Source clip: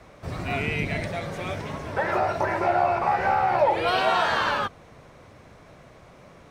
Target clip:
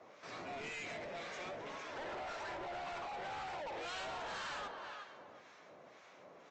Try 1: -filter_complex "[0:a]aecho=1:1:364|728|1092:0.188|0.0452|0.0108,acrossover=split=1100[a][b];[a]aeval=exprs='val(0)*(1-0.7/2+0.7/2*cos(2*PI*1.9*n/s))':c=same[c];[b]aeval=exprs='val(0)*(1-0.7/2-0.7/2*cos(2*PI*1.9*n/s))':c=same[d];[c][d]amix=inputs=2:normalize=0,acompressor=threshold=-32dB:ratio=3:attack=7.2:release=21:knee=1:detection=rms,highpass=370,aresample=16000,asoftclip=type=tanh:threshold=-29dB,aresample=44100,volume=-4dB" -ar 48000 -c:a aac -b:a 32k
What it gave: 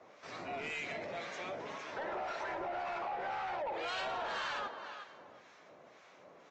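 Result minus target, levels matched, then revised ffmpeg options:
soft clip: distortion -8 dB
-filter_complex "[0:a]aecho=1:1:364|728|1092:0.188|0.0452|0.0108,acrossover=split=1100[a][b];[a]aeval=exprs='val(0)*(1-0.7/2+0.7/2*cos(2*PI*1.9*n/s))':c=same[c];[b]aeval=exprs='val(0)*(1-0.7/2-0.7/2*cos(2*PI*1.9*n/s))':c=same[d];[c][d]amix=inputs=2:normalize=0,acompressor=threshold=-32dB:ratio=3:attack=7.2:release=21:knee=1:detection=rms,highpass=370,aresample=16000,asoftclip=type=tanh:threshold=-38dB,aresample=44100,volume=-4dB" -ar 48000 -c:a aac -b:a 32k

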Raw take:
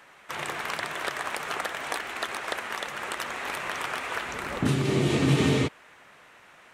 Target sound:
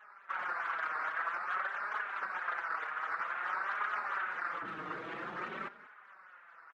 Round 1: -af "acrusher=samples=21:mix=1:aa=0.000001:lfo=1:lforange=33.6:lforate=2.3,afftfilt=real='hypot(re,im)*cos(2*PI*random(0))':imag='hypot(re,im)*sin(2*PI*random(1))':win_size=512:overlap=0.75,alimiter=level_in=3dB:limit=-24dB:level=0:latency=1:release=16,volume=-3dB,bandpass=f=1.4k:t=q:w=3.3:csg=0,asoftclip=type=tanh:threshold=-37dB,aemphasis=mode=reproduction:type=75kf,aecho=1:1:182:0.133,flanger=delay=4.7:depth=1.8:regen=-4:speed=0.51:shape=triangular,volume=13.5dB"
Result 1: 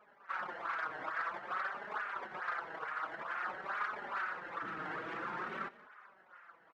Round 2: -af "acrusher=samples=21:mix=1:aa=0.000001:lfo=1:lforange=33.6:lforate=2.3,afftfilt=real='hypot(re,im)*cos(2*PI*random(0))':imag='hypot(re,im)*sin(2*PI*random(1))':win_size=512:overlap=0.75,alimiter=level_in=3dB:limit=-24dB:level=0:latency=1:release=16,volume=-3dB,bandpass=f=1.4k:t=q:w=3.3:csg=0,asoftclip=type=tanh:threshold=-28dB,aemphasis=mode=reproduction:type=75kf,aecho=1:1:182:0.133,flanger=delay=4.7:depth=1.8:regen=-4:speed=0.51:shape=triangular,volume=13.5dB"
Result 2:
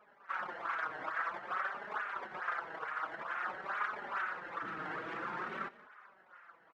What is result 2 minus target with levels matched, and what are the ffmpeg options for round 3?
decimation with a swept rate: distortion +5 dB
-af "acrusher=samples=8:mix=1:aa=0.000001:lfo=1:lforange=12.8:lforate=2.3,afftfilt=real='hypot(re,im)*cos(2*PI*random(0))':imag='hypot(re,im)*sin(2*PI*random(1))':win_size=512:overlap=0.75,alimiter=level_in=3dB:limit=-24dB:level=0:latency=1:release=16,volume=-3dB,bandpass=f=1.4k:t=q:w=3.3:csg=0,asoftclip=type=tanh:threshold=-28dB,aemphasis=mode=reproduction:type=75kf,aecho=1:1:182:0.133,flanger=delay=4.7:depth=1.8:regen=-4:speed=0.51:shape=triangular,volume=13.5dB"

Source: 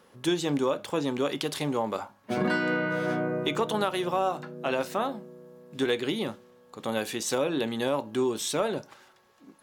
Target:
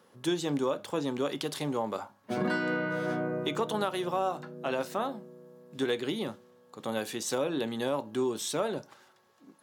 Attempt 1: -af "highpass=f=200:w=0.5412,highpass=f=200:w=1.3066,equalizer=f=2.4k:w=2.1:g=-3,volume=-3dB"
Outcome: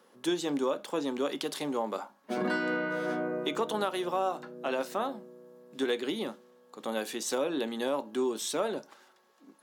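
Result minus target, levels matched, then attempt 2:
125 Hz band -8.0 dB
-af "highpass=f=84:w=0.5412,highpass=f=84:w=1.3066,equalizer=f=2.4k:w=2.1:g=-3,volume=-3dB"

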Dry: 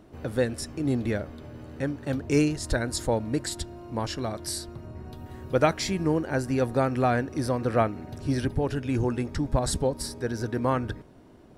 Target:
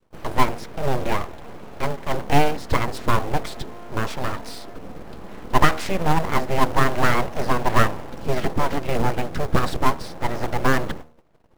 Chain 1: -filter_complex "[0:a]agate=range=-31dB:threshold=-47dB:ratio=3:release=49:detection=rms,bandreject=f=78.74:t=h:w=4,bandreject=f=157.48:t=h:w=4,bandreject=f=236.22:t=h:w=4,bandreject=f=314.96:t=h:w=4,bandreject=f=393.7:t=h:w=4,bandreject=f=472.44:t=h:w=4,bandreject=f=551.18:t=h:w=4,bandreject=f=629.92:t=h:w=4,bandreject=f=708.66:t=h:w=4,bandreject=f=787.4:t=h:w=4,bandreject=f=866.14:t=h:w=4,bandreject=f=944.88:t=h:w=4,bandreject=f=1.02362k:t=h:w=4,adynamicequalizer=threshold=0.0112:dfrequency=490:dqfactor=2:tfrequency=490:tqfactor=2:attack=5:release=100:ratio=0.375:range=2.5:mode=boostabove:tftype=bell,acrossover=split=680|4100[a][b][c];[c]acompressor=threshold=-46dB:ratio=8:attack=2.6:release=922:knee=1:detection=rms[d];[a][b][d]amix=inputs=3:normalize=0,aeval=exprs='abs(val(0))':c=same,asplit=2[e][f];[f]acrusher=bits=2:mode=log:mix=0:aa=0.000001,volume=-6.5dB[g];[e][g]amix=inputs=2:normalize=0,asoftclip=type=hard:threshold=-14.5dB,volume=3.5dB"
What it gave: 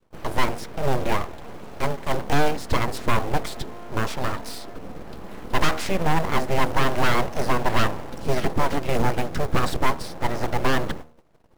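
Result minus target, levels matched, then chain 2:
hard clip: distortion +29 dB; compressor: peak gain reduction -9.5 dB
-filter_complex "[0:a]agate=range=-31dB:threshold=-47dB:ratio=3:release=49:detection=rms,bandreject=f=78.74:t=h:w=4,bandreject=f=157.48:t=h:w=4,bandreject=f=236.22:t=h:w=4,bandreject=f=314.96:t=h:w=4,bandreject=f=393.7:t=h:w=4,bandreject=f=472.44:t=h:w=4,bandreject=f=551.18:t=h:w=4,bandreject=f=629.92:t=h:w=4,bandreject=f=708.66:t=h:w=4,bandreject=f=787.4:t=h:w=4,bandreject=f=866.14:t=h:w=4,bandreject=f=944.88:t=h:w=4,bandreject=f=1.02362k:t=h:w=4,adynamicequalizer=threshold=0.0112:dfrequency=490:dqfactor=2:tfrequency=490:tqfactor=2:attack=5:release=100:ratio=0.375:range=2.5:mode=boostabove:tftype=bell,acrossover=split=680|4100[a][b][c];[c]acompressor=threshold=-57dB:ratio=8:attack=2.6:release=922:knee=1:detection=rms[d];[a][b][d]amix=inputs=3:normalize=0,aeval=exprs='abs(val(0))':c=same,asplit=2[e][f];[f]acrusher=bits=2:mode=log:mix=0:aa=0.000001,volume=-6.5dB[g];[e][g]amix=inputs=2:normalize=0,asoftclip=type=hard:threshold=-4.5dB,volume=3.5dB"

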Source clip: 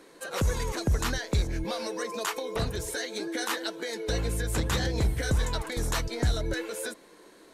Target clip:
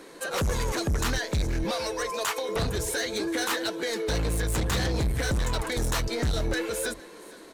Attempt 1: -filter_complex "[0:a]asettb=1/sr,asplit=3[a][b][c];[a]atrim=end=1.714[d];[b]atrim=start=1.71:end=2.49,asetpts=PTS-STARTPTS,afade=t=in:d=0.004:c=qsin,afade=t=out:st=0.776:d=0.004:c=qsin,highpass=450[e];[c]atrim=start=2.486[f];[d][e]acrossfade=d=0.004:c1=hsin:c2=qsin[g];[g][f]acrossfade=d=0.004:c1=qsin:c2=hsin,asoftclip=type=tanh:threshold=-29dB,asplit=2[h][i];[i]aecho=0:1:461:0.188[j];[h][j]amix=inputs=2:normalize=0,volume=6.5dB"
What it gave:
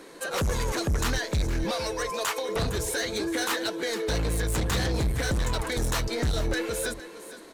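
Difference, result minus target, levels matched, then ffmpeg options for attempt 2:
echo-to-direct +6.5 dB
-filter_complex "[0:a]asettb=1/sr,asplit=3[a][b][c];[a]atrim=end=1.714[d];[b]atrim=start=1.71:end=2.49,asetpts=PTS-STARTPTS,afade=t=in:d=0.004:c=qsin,afade=t=out:st=0.776:d=0.004:c=qsin,highpass=450[e];[c]atrim=start=2.486[f];[d][e]acrossfade=d=0.004:c1=hsin:c2=qsin[g];[g][f]acrossfade=d=0.004:c1=qsin:c2=hsin,asoftclip=type=tanh:threshold=-29dB,asplit=2[h][i];[i]aecho=0:1:461:0.0891[j];[h][j]amix=inputs=2:normalize=0,volume=6.5dB"

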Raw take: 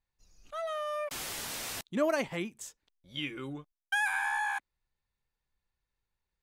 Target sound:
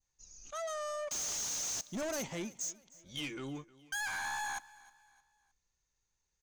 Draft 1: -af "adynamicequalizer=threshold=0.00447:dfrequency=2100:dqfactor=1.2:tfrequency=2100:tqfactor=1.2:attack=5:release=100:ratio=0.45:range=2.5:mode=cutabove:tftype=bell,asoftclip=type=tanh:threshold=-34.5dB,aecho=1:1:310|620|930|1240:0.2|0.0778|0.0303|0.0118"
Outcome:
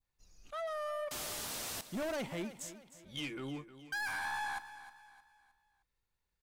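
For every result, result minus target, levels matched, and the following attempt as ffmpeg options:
8000 Hz band -6.5 dB; echo-to-direct +7 dB
-af "adynamicequalizer=threshold=0.00447:dfrequency=2100:dqfactor=1.2:tfrequency=2100:tqfactor=1.2:attack=5:release=100:ratio=0.45:range=2.5:mode=cutabove:tftype=bell,lowpass=f=6.4k:t=q:w=11,asoftclip=type=tanh:threshold=-34.5dB,aecho=1:1:310|620|930|1240:0.2|0.0778|0.0303|0.0118"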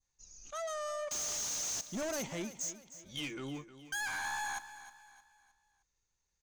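echo-to-direct +7 dB
-af "adynamicequalizer=threshold=0.00447:dfrequency=2100:dqfactor=1.2:tfrequency=2100:tqfactor=1.2:attack=5:release=100:ratio=0.45:range=2.5:mode=cutabove:tftype=bell,lowpass=f=6.4k:t=q:w=11,asoftclip=type=tanh:threshold=-34.5dB,aecho=1:1:310|620|930:0.0891|0.0348|0.0136"

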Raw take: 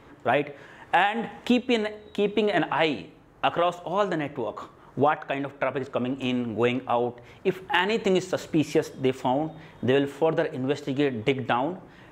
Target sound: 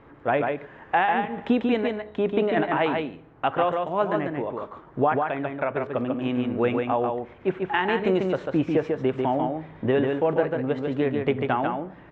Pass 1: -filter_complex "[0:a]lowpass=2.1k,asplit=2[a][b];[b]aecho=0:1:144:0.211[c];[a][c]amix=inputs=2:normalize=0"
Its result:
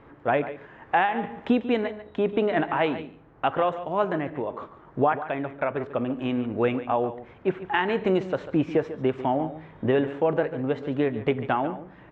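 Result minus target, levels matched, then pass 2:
echo-to-direct -9.5 dB
-filter_complex "[0:a]lowpass=2.1k,asplit=2[a][b];[b]aecho=0:1:144:0.631[c];[a][c]amix=inputs=2:normalize=0"

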